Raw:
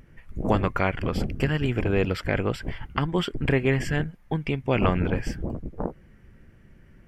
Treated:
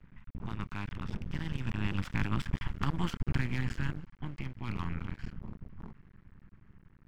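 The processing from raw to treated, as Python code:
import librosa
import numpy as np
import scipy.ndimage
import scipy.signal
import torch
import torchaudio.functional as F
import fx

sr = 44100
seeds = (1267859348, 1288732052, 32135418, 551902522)

y = fx.bin_compress(x, sr, power=0.6)
y = fx.doppler_pass(y, sr, speed_mps=23, closest_m=19.0, pass_at_s=2.77)
y = scipy.signal.sosfilt(scipy.signal.ellip(3, 1.0, 40, [220.0, 920.0], 'bandstop', fs=sr, output='sos'), y)
y = fx.env_lowpass(y, sr, base_hz=2000.0, full_db=-22.0)
y = fx.low_shelf(y, sr, hz=430.0, db=7.5)
y = np.maximum(y, 0.0)
y = y * 10.0 ** (-8.0 / 20.0)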